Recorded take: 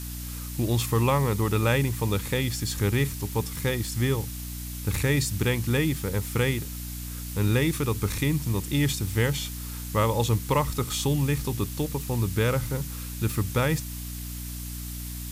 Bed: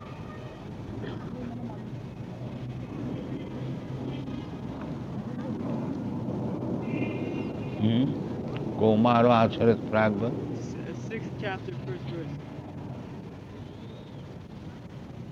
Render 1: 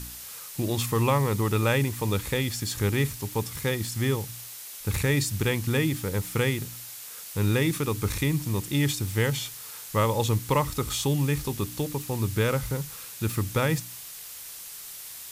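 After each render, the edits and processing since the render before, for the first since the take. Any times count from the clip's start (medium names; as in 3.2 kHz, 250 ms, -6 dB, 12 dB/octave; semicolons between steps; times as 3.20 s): de-hum 60 Hz, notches 5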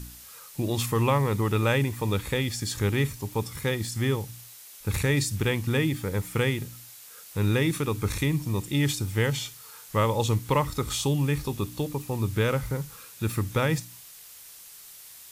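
noise print and reduce 6 dB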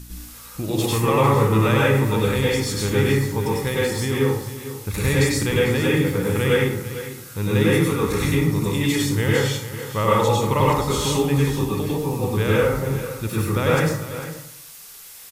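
delay 448 ms -13 dB; plate-style reverb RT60 0.77 s, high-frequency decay 0.5×, pre-delay 85 ms, DRR -6 dB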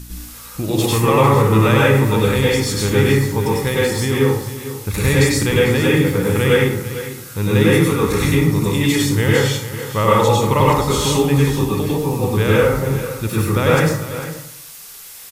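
trim +4.5 dB; peak limiter -2 dBFS, peak gain reduction 3 dB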